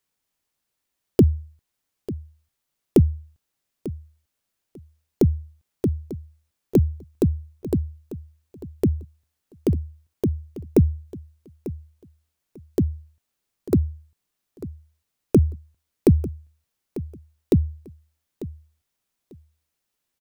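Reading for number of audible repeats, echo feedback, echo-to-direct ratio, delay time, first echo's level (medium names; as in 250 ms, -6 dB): 2, 20%, -15.5 dB, 895 ms, -15.5 dB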